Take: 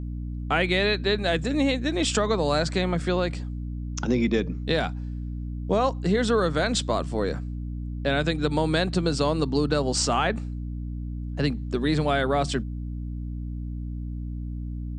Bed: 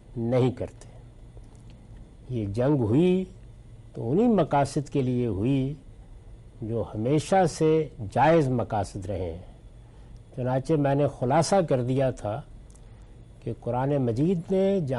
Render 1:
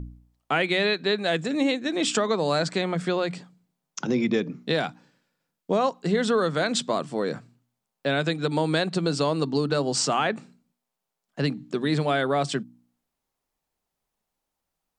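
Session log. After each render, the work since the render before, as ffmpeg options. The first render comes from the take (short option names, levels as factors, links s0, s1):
-af "bandreject=f=60:t=h:w=4,bandreject=f=120:t=h:w=4,bandreject=f=180:t=h:w=4,bandreject=f=240:t=h:w=4,bandreject=f=300:t=h:w=4"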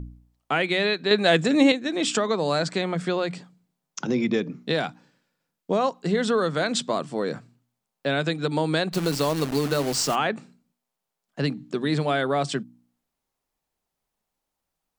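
-filter_complex "[0:a]asplit=3[s0][s1][s2];[s0]afade=t=out:st=8.92:d=0.02[s3];[s1]acrusher=bits=6:dc=4:mix=0:aa=0.000001,afade=t=in:st=8.92:d=0.02,afade=t=out:st=10.14:d=0.02[s4];[s2]afade=t=in:st=10.14:d=0.02[s5];[s3][s4][s5]amix=inputs=3:normalize=0,asplit=3[s6][s7][s8];[s6]atrim=end=1.112[s9];[s7]atrim=start=1.108:end=1.722,asetpts=PTS-STARTPTS,volume=2[s10];[s8]atrim=start=1.718[s11];[s9][s10]acrossfade=d=0.004:c1=hsin:c2=hsin[s12];[s12][s11]acrossfade=d=0.004:c1=hsin:c2=hsin"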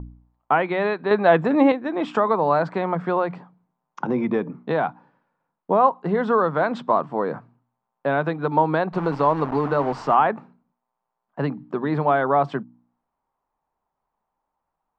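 -af "lowpass=1600,equalizer=f=950:w=1.5:g=12.5"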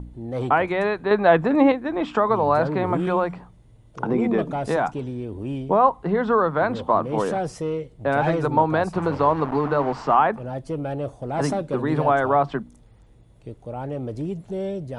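-filter_complex "[1:a]volume=0.562[s0];[0:a][s0]amix=inputs=2:normalize=0"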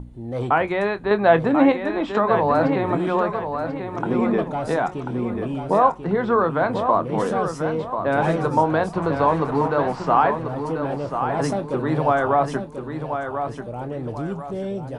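-filter_complex "[0:a]asplit=2[s0][s1];[s1]adelay=25,volume=0.237[s2];[s0][s2]amix=inputs=2:normalize=0,asplit=2[s3][s4];[s4]aecho=0:1:1039|2078|3117|4156:0.422|0.148|0.0517|0.0181[s5];[s3][s5]amix=inputs=2:normalize=0"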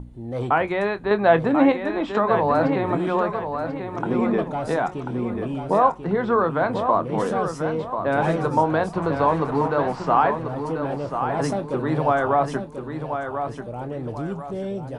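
-af "volume=0.891"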